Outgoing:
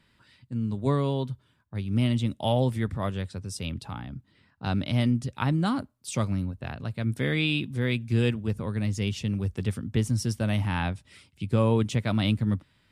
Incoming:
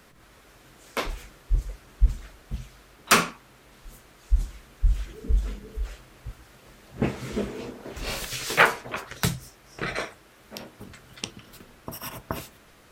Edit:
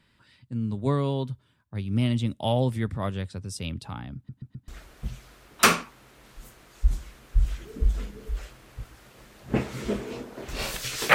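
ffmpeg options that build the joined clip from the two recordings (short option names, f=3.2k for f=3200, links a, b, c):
-filter_complex "[0:a]apad=whole_dur=11.14,atrim=end=11.14,asplit=4[a][b][c][d];[a]atrim=end=4.292[e];[b]atrim=start=4.158:end=4.292[f];[c]atrim=start=4.158:end=4.292[g];[d]atrim=start=4.158:end=4.292[h];[1:a]atrim=start=2.158:end=8.62[i];[e][f]acrossfade=d=0.004:c1=hsin:c2=hsin[j];[j][g]acrossfade=d=0.004:c1=hsin:c2=hsin[k];[k][h]acrossfade=d=0.004:c1=hsin:c2=hsin[l];[l][i]acrossfade=d=0.004:c1=hsin:c2=hsin"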